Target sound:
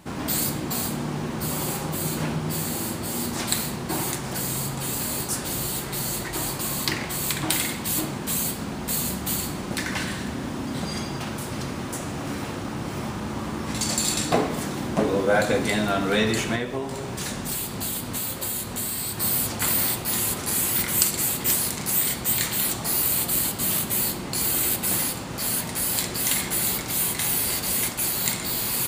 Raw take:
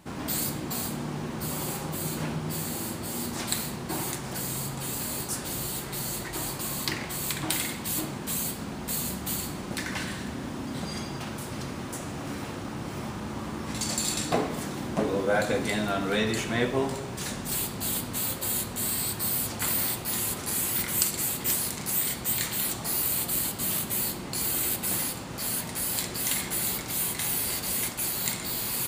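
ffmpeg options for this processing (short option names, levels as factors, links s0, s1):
-filter_complex "[0:a]asettb=1/sr,asplit=3[s0][s1][s2];[s0]atrim=end=16.554[s3];[s1]atrim=start=16.55:end=19.18,asetpts=PTS-STARTPTS,afade=t=in:d=0.004:c=qsin,afade=t=out:st=2.626:d=0.004:c=qsin,acompressor=threshold=0.0316:ratio=5[s4];[s2]atrim=start=19.176[s5];[s3][s4]acrossfade=d=0.004:c1=hsin:c2=qsin[s6];[s6][s5]acrossfade=d=0.004:c1=qsin:c2=hsin,volume=1.68"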